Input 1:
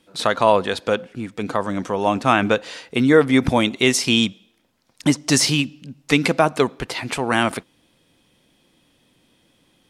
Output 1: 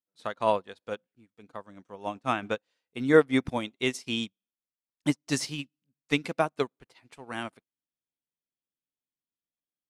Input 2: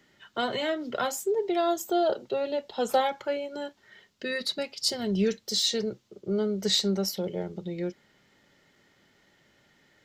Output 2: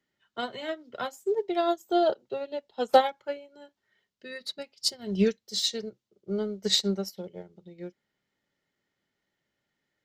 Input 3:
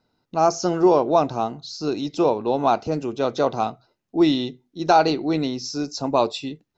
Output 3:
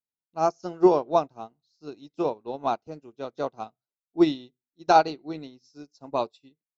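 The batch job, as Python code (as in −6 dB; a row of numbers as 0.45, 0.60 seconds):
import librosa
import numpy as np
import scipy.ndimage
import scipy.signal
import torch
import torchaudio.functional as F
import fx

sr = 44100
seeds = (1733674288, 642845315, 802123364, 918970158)

y = fx.upward_expand(x, sr, threshold_db=-36.0, expansion=2.5)
y = librosa.util.normalize(y) * 10.0 ** (-6 / 20.0)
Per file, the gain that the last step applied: −4.0, +7.0, +0.5 decibels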